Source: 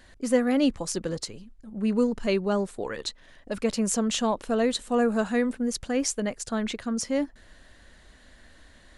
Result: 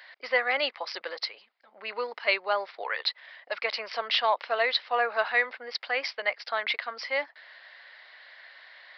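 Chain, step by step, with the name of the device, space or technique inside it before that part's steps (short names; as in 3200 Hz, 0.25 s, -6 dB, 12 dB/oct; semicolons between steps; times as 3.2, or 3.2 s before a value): musical greeting card (downsampling 11025 Hz; HPF 680 Hz 24 dB/oct; bell 2100 Hz +9 dB 0.33 oct); gain +5 dB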